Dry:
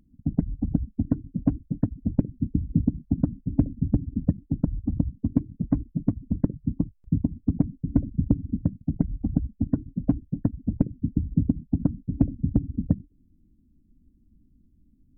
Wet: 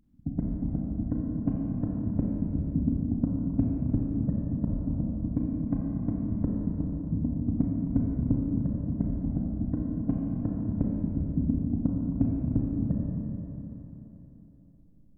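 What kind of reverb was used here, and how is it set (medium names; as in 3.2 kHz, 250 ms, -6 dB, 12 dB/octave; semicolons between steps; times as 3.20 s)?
Schroeder reverb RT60 3.7 s, combs from 29 ms, DRR -3 dB; trim -6.5 dB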